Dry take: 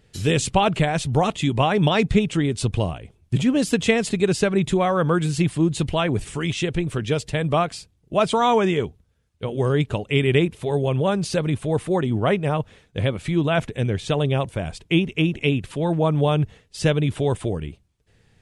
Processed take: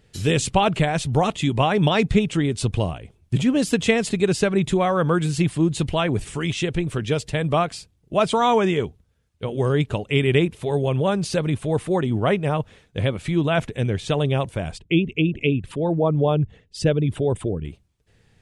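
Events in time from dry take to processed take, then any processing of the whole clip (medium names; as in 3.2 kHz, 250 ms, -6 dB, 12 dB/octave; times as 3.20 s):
14.77–17.65 s: resonances exaggerated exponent 1.5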